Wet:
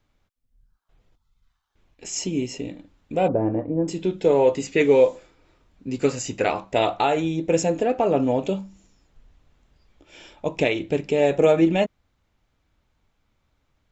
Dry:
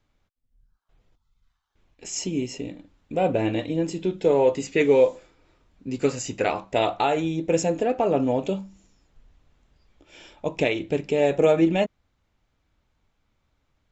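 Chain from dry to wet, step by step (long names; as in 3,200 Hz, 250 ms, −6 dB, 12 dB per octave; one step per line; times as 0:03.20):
0:03.28–0:03.88: low-pass filter 1,200 Hz 24 dB per octave
level +1.5 dB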